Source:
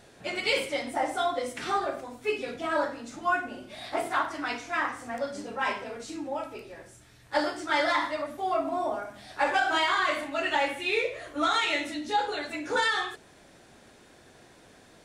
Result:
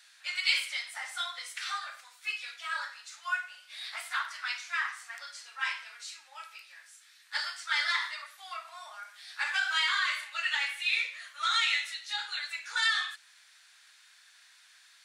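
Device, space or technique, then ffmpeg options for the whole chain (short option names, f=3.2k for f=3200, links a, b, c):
headphones lying on a table: -af "highpass=f=1.4k:w=0.5412,highpass=f=1.4k:w=1.3066,equalizer=f=4.3k:t=o:w=0.52:g=4.5"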